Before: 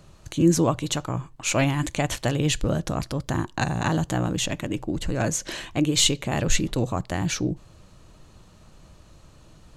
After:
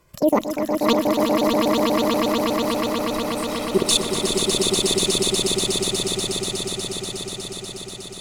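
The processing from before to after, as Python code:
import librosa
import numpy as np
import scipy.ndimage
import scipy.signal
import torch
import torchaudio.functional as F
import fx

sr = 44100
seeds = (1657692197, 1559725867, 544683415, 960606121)

y = fx.speed_glide(x, sr, from_pct=185, to_pct=53)
y = fx.low_shelf(y, sr, hz=79.0, db=-9.5)
y = fx.level_steps(y, sr, step_db=21)
y = fx.env_flanger(y, sr, rest_ms=2.0, full_db=-21.5)
y = fx.echo_swell(y, sr, ms=121, loudest=8, wet_db=-4.5)
y = F.gain(torch.from_numpy(y), 7.5).numpy()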